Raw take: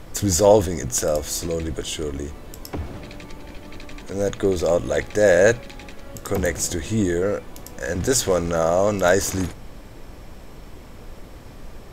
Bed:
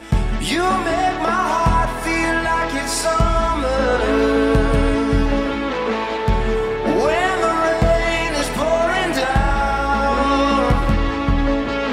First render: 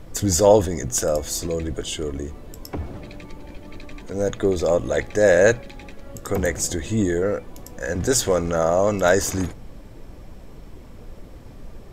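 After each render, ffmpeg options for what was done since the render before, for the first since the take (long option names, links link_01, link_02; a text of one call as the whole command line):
ffmpeg -i in.wav -af "afftdn=noise_reduction=6:noise_floor=-41" out.wav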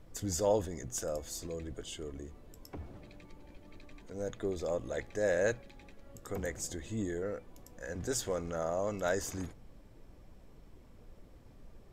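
ffmpeg -i in.wav -af "volume=-15dB" out.wav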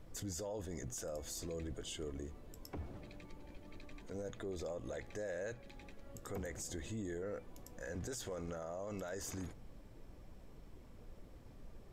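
ffmpeg -i in.wav -af "acompressor=threshold=-37dB:ratio=3,alimiter=level_in=11dB:limit=-24dB:level=0:latency=1:release=16,volume=-11dB" out.wav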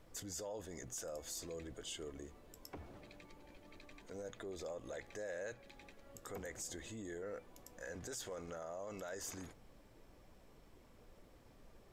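ffmpeg -i in.wav -af "lowshelf=frequency=290:gain=-9.5" out.wav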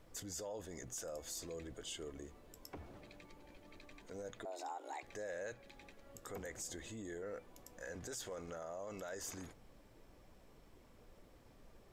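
ffmpeg -i in.wav -filter_complex "[0:a]asettb=1/sr,asplit=3[link_01][link_02][link_03];[link_01]atrim=end=4.454[link_04];[link_02]atrim=start=4.45:end=5.03,asetpts=PTS-STARTPTS,afade=type=in:duration=0.004:curve=qsin,afade=type=out:start_time=0.576:duration=0.004:curve=qsin,afreqshift=270[link_05];[link_03]atrim=start=5.026[link_06];[link_04][link_05]acrossfade=duration=0.004:curve1=hsin:curve2=qsin[link_07];[link_07][link_06]acrossfade=duration=0.004:curve1=qsin:curve2=hsin" out.wav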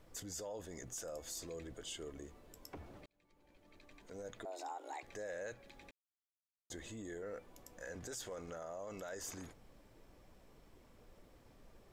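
ffmpeg -i in.wav -filter_complex "[0:a]asplit=4[link_01][link_02][link_03][link_04];[link_01]atrim=end=3.06,asetpts=PTS-STARTPTS,afade=type=out:start_time=3.056:duration=0.004:curve=hsin[link_05];[link_02]atrim=start=3.06:end=5.91,asetpts=PTS-STARTPTS,afade=type=in:duration=1.26,afade=type=out:start_time=2.846:duration=0.004:curve=hsin[link_06];[link_03]atrim=start=5.91:end=6.7,asetpts=PTS-STARTPTS,volume=0[link_07];[link_04]atrim=start=6.7,asetpts=PTS-STARTPTS,afade=type=in:duration=0.004:curve=hsin[link_08];[link_05][link_06][link_07][link_08]concat=n=4:v=0:a=1" out.wav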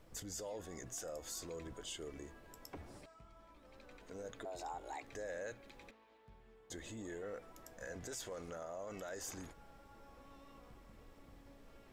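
ffmpeg -i in.wav -i bed.wav -filter_complex "[1:a]volume=-44.5dB[link_01];[0:a][link_01]amix=inputs=2:normalize=0" out.wav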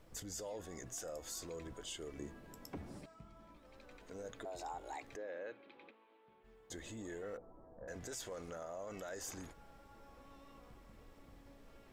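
ffmpeg -i in.wav -filter_complex "[0:a]asettb=1/sr,asplit=3[link_01][link_02][link_03];[link_01]atrim=end=2.184[link_04];[link_02]atrim=start=2.18:end=3.57,asetpts=PTS-STARTPTS,afade=type=in:duration=0.004:curve=qsin,afade=type=out:start_time=1.386:duration=0.004:curve=qsin,equalizer=frequency=190:width=0.96:gain=9.5[link_05];[link_03]atrim=start=3.566[link_06];[link_04][link_05]acrossfade=duration=0.004:curve1=hsin:curve2=qsin[link_07];[link_07][link_06]acrossfade=duration=0.004:curve1=qsin:curve2=hsin,asplit=3[link_08][link_09][link_10];[link_08]afade=type=out:start_time=5.15:duration=0.02[link_11];[link_09]highpass=270,equalizer=frequency=330:width_type=q:width=4:gain=4,equalizer=frequency=660:width_type=q:width=4:gain=-4,equalizer=frequency=1800:width_type=q:width=4:gain=-5,lowpass=frequency=3400:width=0.5412,lowpass=frequency=3400:width=1.3066,afade=type=in:start_time=5.15:duration=0.02,afade=type=out:start_time=6.43:duration=0.02[link_12];[link_10]afade=type=in:start_time=6.43:duration=0.02[link_13];[link_11][link_12][link_13]amix=inputs=3:normalize=0,asettb=1/sr,asplit=3[link_14][link_15][link_16];[link_14]atrim=end=7.374[link_17];[link_15]atrim=start=7.37:end=7.88,asetpts=PTS-STARTPTS,afade=type=in:duration=0.004:curve=qsin,afade=type=out:start_time=0.506:duration=0.004:curve=qsin,lowpass=frequency=1000:width=0.5412,lowpass=frequency=1000:width=1.3066[link_18];[link_16]atrim=start=7.876[link_19];[link_17][link_18]acrossfade=duration=0.004:curve1=hsin:curve2=qsin[link_20];[link_20][link_19]acrossfade=duration=0.004:curve1=qsin:curve2=hsin" out.wav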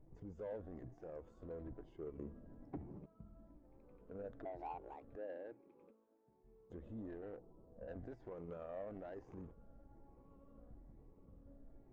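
ffmpeg -i in.wav -af "afftfilt=real='re*pow(10,7/40*sin(2*PI*(0.76*log(max(b,1)*sr/1024/100)/log(2)-(1.1)*(pts-256)/sr)))':imag='im*pow(10,7/40*sin(2*PI*(0.76*log(max(b,1)*sr/1024/100)/log(2)-(1.1)*(pts-256)/sr)))':win_size=1024:overlap=0.75,adynamicsmooth=sensitivity=2.5:basefreq=500" out.wav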